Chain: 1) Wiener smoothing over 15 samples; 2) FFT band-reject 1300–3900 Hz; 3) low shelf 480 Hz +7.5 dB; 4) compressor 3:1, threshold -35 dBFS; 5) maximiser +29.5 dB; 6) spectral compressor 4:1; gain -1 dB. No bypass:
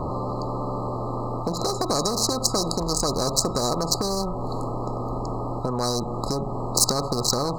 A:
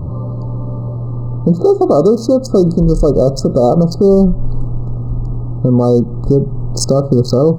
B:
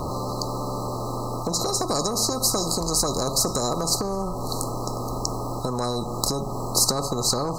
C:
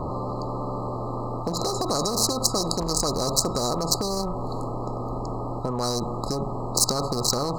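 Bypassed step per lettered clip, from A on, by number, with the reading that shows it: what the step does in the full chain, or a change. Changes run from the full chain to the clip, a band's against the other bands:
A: 6, 8 kHz band -19.5 dB; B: 1, 8 kHz band +3.0 dB; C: 4, mean gain reduction 4.0 dB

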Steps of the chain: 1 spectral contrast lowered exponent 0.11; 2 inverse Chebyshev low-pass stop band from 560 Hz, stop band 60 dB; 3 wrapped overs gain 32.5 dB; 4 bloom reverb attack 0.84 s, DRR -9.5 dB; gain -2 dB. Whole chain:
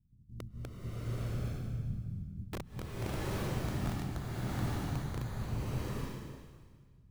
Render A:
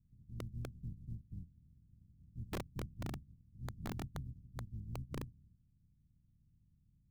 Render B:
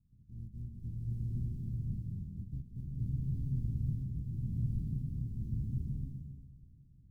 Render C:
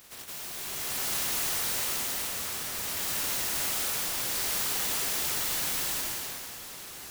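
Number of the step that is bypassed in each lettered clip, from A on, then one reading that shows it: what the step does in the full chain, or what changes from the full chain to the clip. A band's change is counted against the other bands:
4, momentary loudness spread change +6 LU; 3, distortion -2 dB; 2, 125 Hz band -24.0 dB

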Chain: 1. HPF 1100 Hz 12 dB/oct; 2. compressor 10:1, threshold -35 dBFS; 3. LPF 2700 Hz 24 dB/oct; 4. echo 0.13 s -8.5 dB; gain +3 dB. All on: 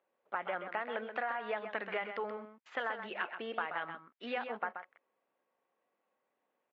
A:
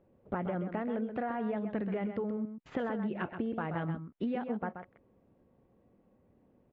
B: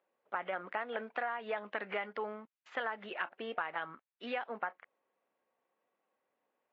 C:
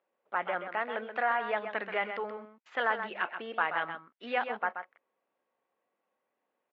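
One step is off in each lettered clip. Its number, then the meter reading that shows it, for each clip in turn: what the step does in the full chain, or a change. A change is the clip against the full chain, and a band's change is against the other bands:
1, 125 Hz band +23.5 dB; 4, momentary loudness spread change -1 LU; 2, mean gain reduction 3.5 dB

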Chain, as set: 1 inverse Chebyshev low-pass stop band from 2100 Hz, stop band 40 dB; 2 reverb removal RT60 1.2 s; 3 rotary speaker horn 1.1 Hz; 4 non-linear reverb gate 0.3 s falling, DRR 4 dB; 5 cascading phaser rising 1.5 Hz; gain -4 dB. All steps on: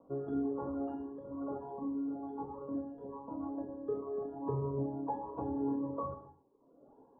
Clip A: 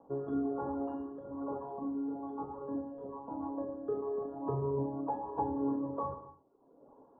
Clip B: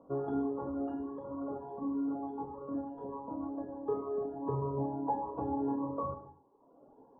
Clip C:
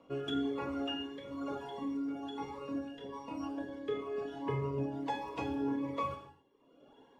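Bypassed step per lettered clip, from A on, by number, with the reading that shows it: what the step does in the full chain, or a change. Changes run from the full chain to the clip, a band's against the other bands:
5, 1 kHz band +3.0 dB; 3, 1 kHz band +3.0 dB; 1, 1 kHz band +2.0 dB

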